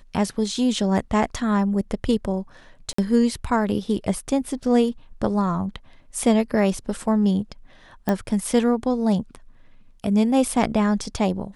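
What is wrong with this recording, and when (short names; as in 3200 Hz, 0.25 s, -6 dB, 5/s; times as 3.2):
2.93–2.98 gap 54 ms
8.09 pop -10 dBFS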